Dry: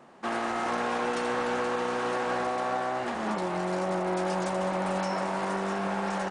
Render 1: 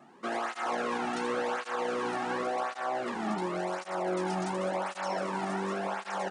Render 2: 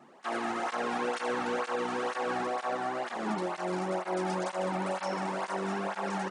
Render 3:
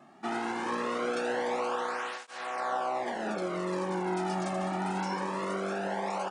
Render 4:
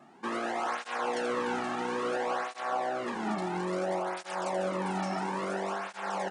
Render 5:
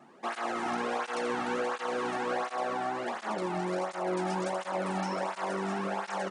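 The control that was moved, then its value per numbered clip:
cancelling through-zero flanger, nulls at: 0.91 Hz, 2.1 Hz, 0.22 Hz, 0.59 Hz, 1.4 Hz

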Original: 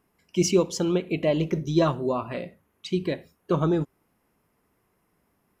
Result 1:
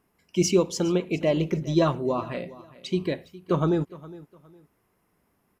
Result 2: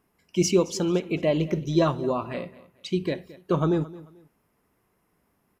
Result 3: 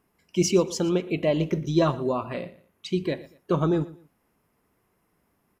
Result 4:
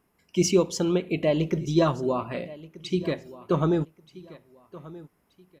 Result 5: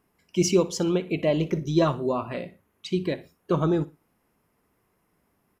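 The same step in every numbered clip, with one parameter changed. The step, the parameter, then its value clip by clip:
feedback delay, time: 411 ms, 220 ms, 118 ms, 1229 ms, 60 ms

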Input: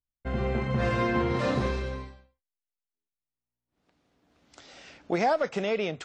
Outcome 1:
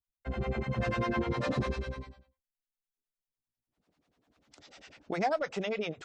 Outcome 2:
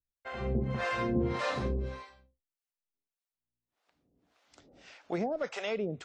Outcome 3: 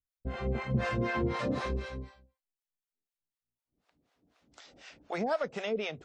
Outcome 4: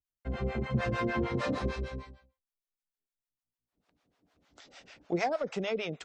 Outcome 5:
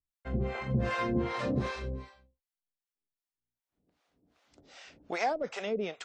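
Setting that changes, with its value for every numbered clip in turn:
harmonic tremolo, rate: 10 Hz, 1.7 Hz, 4 Hz, 6.6 Hz, 2.6 Hz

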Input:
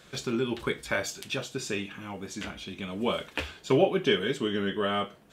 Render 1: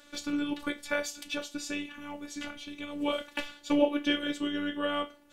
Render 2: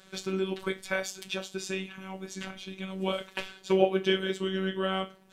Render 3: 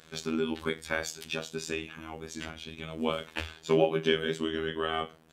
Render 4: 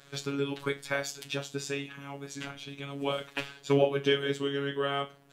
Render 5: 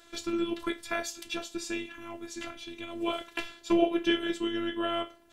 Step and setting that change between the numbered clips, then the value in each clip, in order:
robot voice, frequency: 290 Hz, 190 Hz, 80 Hz, 140 Hz, 340 Hz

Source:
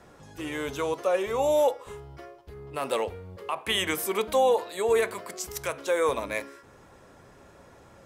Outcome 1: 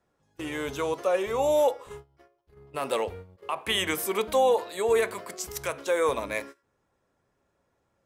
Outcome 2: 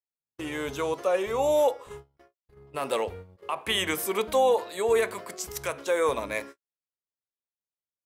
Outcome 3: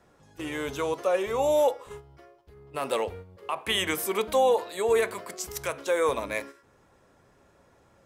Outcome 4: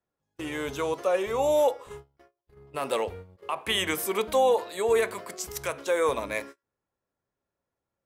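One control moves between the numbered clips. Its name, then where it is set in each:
gate, range: -21 dB, -58 dB, -8 dB, -34 dB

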